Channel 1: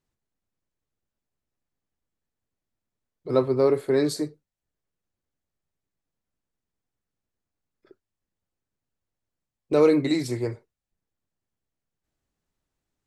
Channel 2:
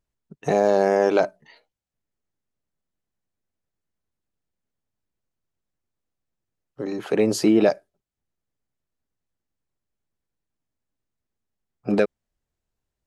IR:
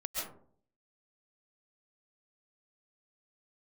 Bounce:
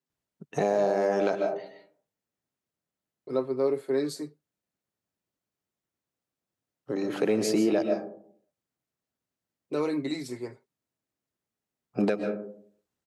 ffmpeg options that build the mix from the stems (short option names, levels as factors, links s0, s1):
-filter_complex "[0:a]highpass=f=150:w=0.5412,highpass=f=150:w=1.3066,aecho=1:1:7.5:0.5,volume=0.398,asplit=3[s0][s1][s2];[s0]atrim=end=2.71,asetpts=PTS-STARTPTS,afade=t=out:st=2.706:d=0.004:c=hsin[s3];[s1]atrim=start=2.71:end=3.27,asetpts=PTS-STARTPTS,volume=0[s4];[s2]atrim=start=3.27,asetpts=PTS-STARTPTS,afade=t=in:d=0.004:c=hsin[s5];[s3][s4][s5]concat=n=3:v=0:a=1[s6];[1:a]adelay=100,volume=0.631,asplit=2[s7][s8];[s8]volume=0.596[s9];[2:a]atrim=start_sample=2205[s10];[s9][s10]afir=irnorm=-1:irlink=0[s11];[s6][s7][s11]amix=inputs=3:normalize=0,highpass=110,alimiter=limit=0.178:level=0:latency=1:release=423"